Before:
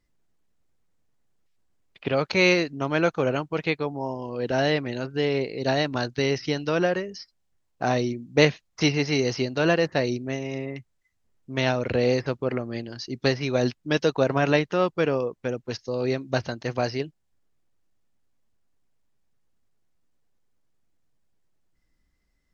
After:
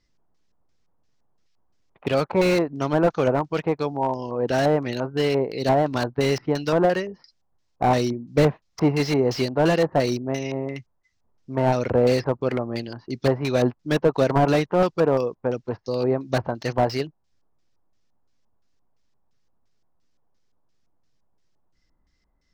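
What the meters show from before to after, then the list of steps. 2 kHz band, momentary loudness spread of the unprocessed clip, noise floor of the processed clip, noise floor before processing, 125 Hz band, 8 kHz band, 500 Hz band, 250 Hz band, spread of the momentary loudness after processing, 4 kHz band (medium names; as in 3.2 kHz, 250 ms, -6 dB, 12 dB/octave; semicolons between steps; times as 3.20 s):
-3.5 dB, 11 LU, -69 dBFS, -72 dBFS, +3.0 dB, no reading, +3.0 dB, +2.5 dB, 8 LU, -3.0 dB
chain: LFO low-pass square 2.9 Hz 960–5400 Hz; slew-rate limiter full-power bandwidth 94 Hz; trim +2.5 dB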